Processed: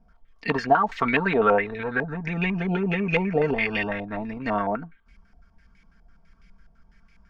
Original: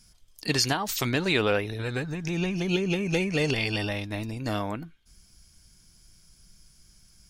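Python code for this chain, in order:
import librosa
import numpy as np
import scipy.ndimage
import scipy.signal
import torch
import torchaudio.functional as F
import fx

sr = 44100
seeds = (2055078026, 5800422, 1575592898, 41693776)

y = x + 0.66 * np.pad(x, (int(4.4 * sr / 1000.0), 0))[:len(x)]
y = fx.filter_held_lowpass(y, sr, hz=12.0, low_hz=740.0, high_hz=2200.0)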